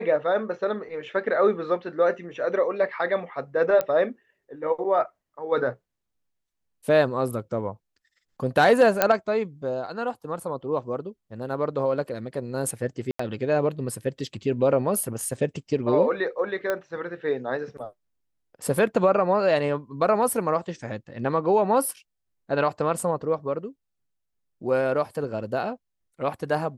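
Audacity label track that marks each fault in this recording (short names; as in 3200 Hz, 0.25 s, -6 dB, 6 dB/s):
3.810000	3.810000	pop -12 dBFS
9.020000	9.020000	pop -3 dBFS
13.110000	13.190000	gap 84 ms
16.700000	16.700000	pop -13 dBFS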